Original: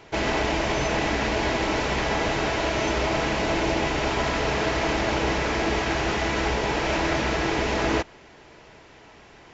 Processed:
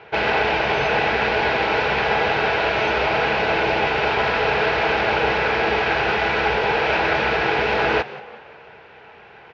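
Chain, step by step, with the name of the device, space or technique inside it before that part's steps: frequency-shifting delay pedal into a guitar cabinet (frequency-shifting echo 183 ms, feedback 50%, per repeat +79 Hz, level -18 dB; cabinet simulation 75–4000 Hz, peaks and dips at 290 Hz -9 dB, 460 Hz +9 dB, 810 Hz +8 dB, 1.5 kHz +10 dB, 2.5 kHz +7 dB); dynamic bell 5 kHz, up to +6 dB, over -44 dBFS, Q 1.1

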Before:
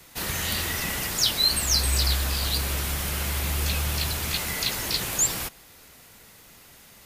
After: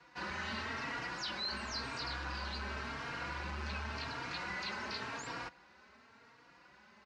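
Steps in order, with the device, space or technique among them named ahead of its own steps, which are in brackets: barber-pole flanger into a guitar amplifier (endless flanger 3.7 ms +0.92 Hz; saturation -23.5 dBFS, distortion -14 dB; cabinet simulation 93–4500 Hz, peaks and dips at 100 Hz -9 dB, 160 Hz -6 dB, 230 Hz +4 dB, 980 Hz +8 dB, 1.5 kHz +8 dB, 3.4 kHz -9 dB); trim -6 dB

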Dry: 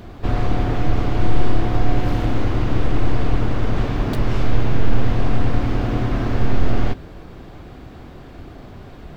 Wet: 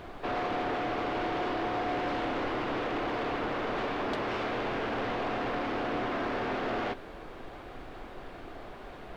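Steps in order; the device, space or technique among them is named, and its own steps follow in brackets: aircraft cabin announcement (band-pass 430–3500 Hz; saturation -25.5 dBFS, distortion -16 dB; brown noise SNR 14 dB)

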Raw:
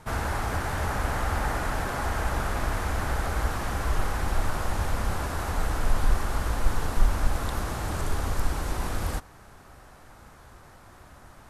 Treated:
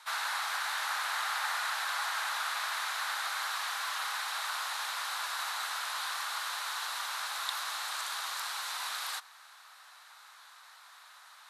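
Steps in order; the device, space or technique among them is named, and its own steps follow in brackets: headphones lying on a table (high-pass 1 kHz 24 dB/octave; peaking EQ 3.9 kHz +10.5 dB 0.51 oct)

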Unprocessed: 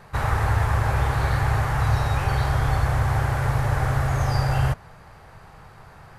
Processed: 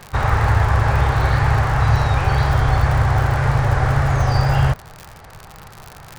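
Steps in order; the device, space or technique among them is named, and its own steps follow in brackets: lo-fi chain (low-pass 6.5 kHz 12 dB/octave; wow and flutter; crackle 78 per s -29 dBFS); trim +5.5 dB

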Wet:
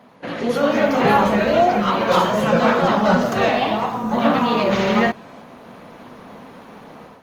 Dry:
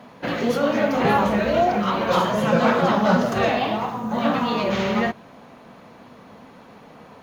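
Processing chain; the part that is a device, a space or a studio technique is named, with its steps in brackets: video call (high-pass 120 Hz 6 dB/octave; level rider gain up to 10 dB; trim -2.5 dB; Opus 24 kbps 48 kHz)

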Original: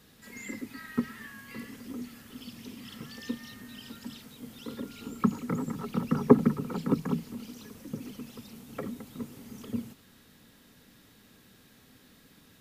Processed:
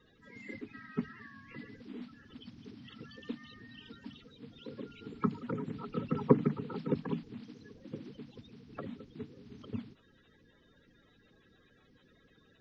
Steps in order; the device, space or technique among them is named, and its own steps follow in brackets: clip after many re-uploads (low-pass 4.1 kHz 24 dB/octave; coarse spectral quantiser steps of 30 dB); trim -5 dB

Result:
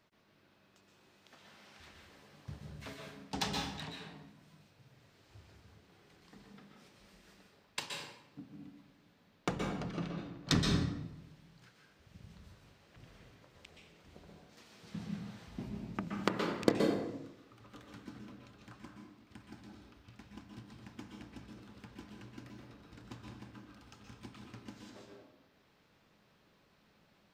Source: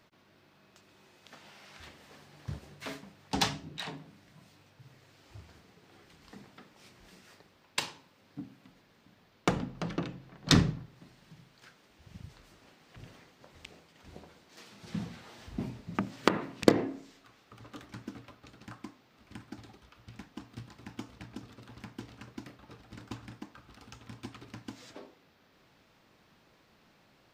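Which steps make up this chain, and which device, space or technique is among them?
bathroom (reverberation RT60 0.90 s, pre-delay 117 ms, DRR 0.5 dB); trim -7.5 dB

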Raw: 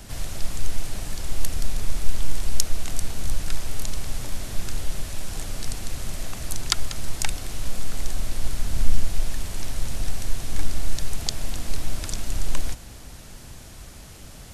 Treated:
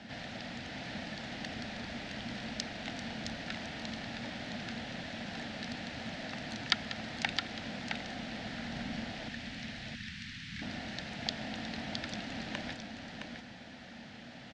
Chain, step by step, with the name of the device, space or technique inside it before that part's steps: 9.28–10.62 s: Chebyshev band-stop 160–1900 Hz, order 2; kitchen radio (cabinet simulation 190–4200 Hz, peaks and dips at 230 Hz +9 dB, 390 Hz -10 dB, 740 Hz +4 dB, 1.1 kHz -10 dB, 1.8 kHz +6 dB); delay 665 ms -5.5 dB; trim -2.5 dB

